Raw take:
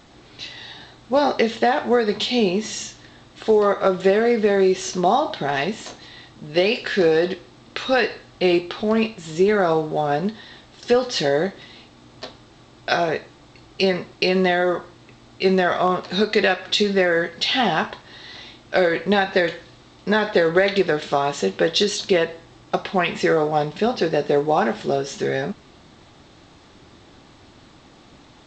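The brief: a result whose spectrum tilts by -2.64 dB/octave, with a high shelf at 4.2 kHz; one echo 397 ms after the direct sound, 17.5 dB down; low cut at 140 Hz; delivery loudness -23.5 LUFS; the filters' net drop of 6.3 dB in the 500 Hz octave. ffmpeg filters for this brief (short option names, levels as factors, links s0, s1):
-af "highpass=140,equalizer=f=500:t=o:g=-8,highshelf=f=4200:g=-3.5,aecho=1:1:397:0.133,volume=1.12"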